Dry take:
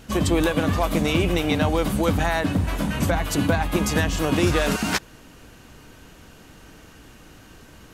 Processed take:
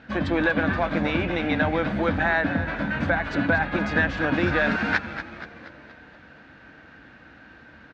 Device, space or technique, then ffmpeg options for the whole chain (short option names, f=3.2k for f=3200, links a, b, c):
frequency-shifting delay pedal into a guitar cabinet: -filter_complex "[0:a]asplit=7[a][b][c][d][e][f][g];[b]adelay=237,afreqshift=-130,volume=-10.5dB[h];[c]adelay=474,afreqshift=-260,volume=-15.7dB[i];[d]adelay=711,afreqshift=-390,volume=-20.9dB[j];[e]adelay=948,afreqshift=-520,volume=-26.1dB[k];[f]adelay=1185,afreqshift=-650,volume=-31.3dB[l];[g]adelay=1422,afreqshift=-780,volume=-36.5dB[m];[a][h][i][j][k][l][m]amix=inputs=7:normalize=0,highpass=96,equalizer=f=110:t=q:w=4:g=-8,equalizer=f=170:t=q:w=4:g=-6,equalizer=f=400:t=q:w=4:g=-9,equalizer=f=1.1k:t=q:w=4:g=-5,equalizer=f=1.6k:t=q:w=4:g=9,equalizer=f=3k:t=q:w=4:g=-8,lowpass=f=3.5k:w=0.5412,lowpass=f=3.5k:w=1.3066"